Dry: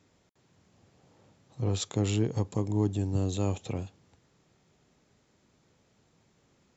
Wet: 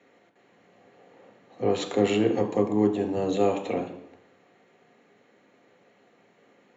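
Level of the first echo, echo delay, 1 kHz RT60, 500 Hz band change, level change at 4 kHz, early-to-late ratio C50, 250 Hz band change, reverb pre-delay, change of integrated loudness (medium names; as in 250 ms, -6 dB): no echo, no echo, 0.85 s, +11.0 dB, +3.0 dB, 10.0 dB, +6.0 dB, 3 ms, +5.0 dB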